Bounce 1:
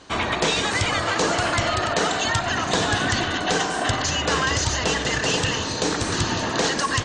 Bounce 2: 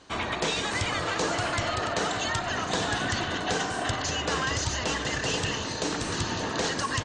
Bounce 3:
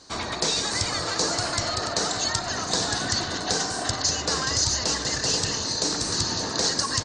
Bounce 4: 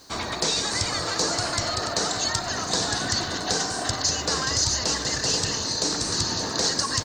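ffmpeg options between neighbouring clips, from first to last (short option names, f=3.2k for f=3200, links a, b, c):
-filter_complex "[0:a]asplit=2[a][b];[b]adelay=583.1,volume=-9dB,highshelf=f=4k:g=-13.1[c];[a][c]amix=inputs=2:normalize=0,volume=-6.5dB"
-af "highshelf=f=3.7k:t=q:w=3:g=6.5"
-af "acrusher=bits=8:mix=0:aa=0.5,acontrast=36,volume=-5dB"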